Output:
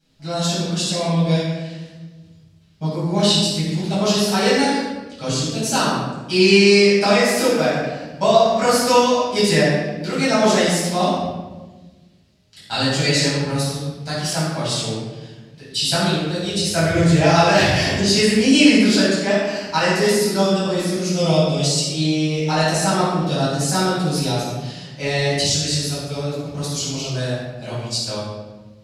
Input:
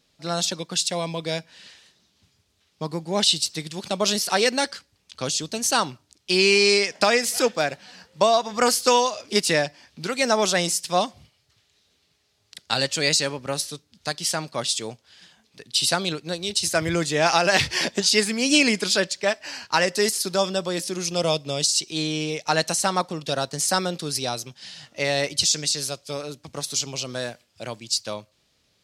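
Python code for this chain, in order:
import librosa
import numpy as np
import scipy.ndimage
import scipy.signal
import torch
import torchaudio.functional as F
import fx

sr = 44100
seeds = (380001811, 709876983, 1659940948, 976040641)

y = fx.low_shelf(x, sr, hz=310.0, db=7.0)
y = fx.room_shoebox(y, sr, seeds[0], volume_m3=810.0, walls='mixed', distance_m=8.0)
y = F.gain(torch.from_numpy(y), -11.0).numpy()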